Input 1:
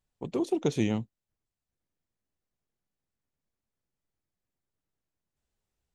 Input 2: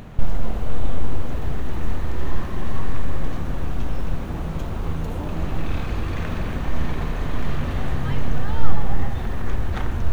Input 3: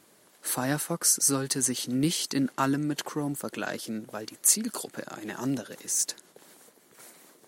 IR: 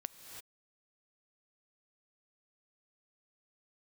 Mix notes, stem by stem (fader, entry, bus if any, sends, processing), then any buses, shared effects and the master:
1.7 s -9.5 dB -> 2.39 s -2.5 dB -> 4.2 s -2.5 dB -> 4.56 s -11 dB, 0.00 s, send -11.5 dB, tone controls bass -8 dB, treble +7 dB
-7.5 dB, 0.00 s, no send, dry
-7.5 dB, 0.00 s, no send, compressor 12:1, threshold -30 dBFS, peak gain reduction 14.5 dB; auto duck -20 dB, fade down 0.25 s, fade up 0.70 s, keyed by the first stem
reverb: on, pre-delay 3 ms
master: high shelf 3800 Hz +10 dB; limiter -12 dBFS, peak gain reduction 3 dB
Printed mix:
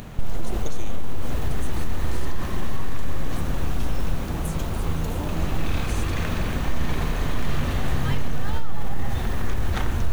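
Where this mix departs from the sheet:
stem 2 -7.5 dB -> +0.5 dB; stem 3 -7.5 dB -> -18.0 dB

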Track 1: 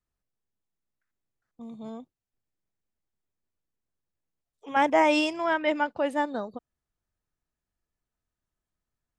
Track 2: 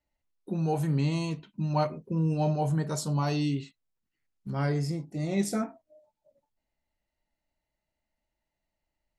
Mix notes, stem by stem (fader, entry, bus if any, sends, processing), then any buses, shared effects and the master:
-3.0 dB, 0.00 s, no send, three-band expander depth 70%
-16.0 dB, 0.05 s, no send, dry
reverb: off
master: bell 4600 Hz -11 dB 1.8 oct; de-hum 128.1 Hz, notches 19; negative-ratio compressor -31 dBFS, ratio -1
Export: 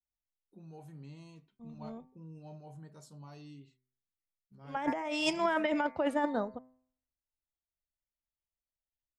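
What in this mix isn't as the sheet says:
stem 2 -16.0 dB -> -27.5 dB; master: missing bell 4600 Hz -11 dB 1.8 oct

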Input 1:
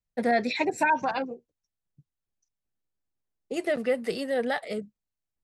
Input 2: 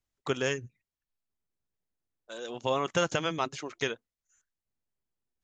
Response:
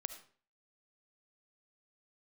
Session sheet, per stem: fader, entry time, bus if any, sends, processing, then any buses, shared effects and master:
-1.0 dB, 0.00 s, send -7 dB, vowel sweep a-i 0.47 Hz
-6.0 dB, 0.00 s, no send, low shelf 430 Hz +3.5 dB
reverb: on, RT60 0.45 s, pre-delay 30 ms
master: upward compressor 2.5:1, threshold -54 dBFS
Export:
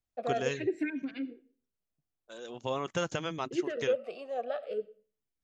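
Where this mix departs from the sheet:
stem 1: send -7 dB -> -1 dB; master: missing upward compressor 2.5:1, threshold -54 dBFS

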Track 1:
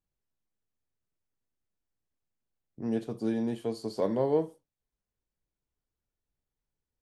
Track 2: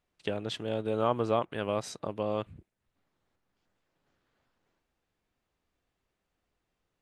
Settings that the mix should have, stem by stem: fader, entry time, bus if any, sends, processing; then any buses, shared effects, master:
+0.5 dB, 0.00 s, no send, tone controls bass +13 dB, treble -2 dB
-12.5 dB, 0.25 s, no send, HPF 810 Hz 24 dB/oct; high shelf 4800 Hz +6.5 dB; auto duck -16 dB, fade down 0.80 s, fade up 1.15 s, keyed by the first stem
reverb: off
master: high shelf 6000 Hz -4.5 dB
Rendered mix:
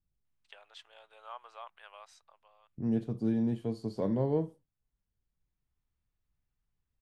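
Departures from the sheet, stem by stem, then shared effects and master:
stem 1 +0.5 dB -> -6.0 dB; stem 2: missing high shelf 4800 Hz +6.5 dB

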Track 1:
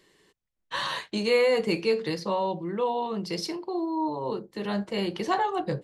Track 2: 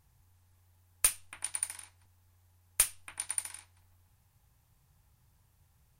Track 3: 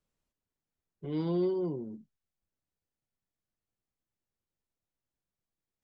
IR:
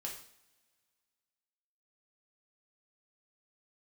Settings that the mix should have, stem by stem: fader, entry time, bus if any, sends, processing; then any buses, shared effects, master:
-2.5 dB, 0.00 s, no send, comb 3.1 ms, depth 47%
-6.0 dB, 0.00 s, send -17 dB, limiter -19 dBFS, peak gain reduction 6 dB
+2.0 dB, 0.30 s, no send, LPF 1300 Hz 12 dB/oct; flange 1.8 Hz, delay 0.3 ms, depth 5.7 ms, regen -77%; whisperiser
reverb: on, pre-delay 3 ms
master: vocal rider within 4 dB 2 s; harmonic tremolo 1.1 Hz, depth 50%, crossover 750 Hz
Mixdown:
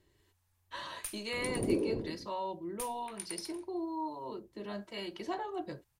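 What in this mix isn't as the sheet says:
stem 1 -2.5 dB -> -9.0 dB; master: missing vocal rider within 4 dB 2 s

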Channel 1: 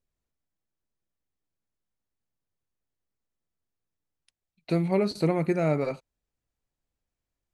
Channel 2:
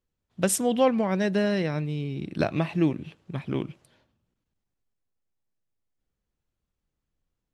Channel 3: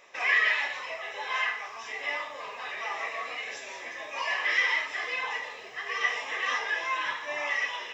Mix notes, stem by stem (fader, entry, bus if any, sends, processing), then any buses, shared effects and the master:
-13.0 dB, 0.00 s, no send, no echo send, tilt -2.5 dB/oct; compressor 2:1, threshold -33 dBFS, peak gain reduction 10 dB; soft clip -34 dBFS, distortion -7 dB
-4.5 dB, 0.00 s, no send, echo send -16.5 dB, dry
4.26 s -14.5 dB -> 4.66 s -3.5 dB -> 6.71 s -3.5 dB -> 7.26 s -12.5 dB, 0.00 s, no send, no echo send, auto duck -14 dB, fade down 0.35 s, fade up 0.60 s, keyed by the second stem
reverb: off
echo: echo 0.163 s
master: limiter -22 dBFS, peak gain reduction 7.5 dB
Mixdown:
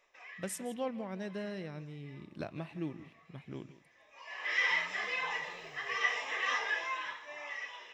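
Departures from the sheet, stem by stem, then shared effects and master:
stem 1 -13.0 dB -> -25.0 dB; stem 2 -4.5 dB -> -15.5 dB; master: missing limiter -22 dBFS, peak gain reduction 7.5 dB

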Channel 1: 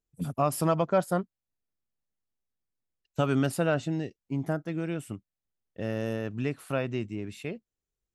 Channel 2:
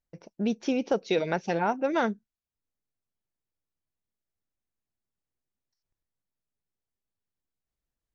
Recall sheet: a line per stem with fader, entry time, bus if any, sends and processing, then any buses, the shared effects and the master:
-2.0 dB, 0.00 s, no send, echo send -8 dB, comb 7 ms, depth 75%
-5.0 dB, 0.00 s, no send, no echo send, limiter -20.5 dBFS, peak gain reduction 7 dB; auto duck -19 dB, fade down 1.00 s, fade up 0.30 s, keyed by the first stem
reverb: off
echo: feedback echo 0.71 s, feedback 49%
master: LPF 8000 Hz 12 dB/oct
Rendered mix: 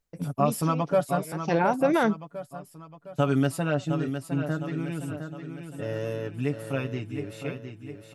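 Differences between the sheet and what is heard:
stem 2 -5.0 dB -> +6.5 dB; master: missing LPF 8000 Hz 12 dB/oct

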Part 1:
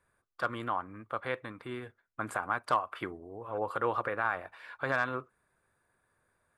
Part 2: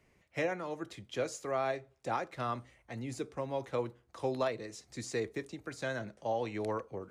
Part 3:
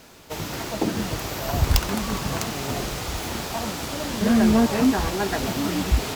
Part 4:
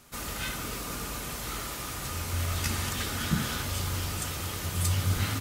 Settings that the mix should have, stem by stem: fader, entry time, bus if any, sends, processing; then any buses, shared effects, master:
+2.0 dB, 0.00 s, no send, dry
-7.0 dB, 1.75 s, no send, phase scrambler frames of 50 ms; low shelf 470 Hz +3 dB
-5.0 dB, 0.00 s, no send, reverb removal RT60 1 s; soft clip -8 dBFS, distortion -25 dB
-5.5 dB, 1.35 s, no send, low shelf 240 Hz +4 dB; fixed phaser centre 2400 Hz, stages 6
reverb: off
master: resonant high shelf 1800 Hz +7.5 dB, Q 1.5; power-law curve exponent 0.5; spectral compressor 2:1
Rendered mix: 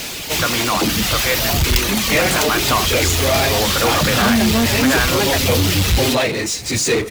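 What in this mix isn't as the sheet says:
stem 2 -7.0 dB -> +4.0 dB; stem 4: entry 1.35 s -> 0.70 s; master: missing spectral compressor 2:1

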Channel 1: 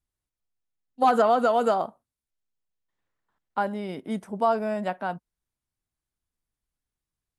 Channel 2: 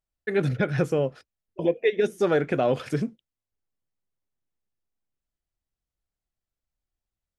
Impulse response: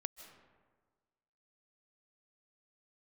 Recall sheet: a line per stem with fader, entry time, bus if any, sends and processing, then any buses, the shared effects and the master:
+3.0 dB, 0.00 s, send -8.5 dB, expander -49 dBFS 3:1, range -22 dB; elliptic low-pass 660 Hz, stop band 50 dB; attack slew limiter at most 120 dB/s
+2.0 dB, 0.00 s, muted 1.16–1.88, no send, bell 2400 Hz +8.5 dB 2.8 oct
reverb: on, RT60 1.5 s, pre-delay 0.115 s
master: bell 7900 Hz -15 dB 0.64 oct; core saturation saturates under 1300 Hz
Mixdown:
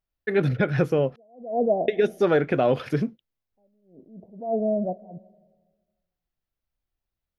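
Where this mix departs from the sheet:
stem 2: missing bell 2400 Hz +8.5 dB 2.8 oct; master: missing core saturation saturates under 1300 Hz

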